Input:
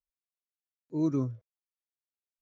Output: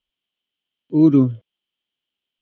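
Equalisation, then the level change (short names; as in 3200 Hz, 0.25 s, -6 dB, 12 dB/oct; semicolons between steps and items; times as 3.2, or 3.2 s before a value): synth low-pass 3100 Hz, resonance Q 12; bell 240 Hz +9.5 dB 1.7 oct; +7.5 dB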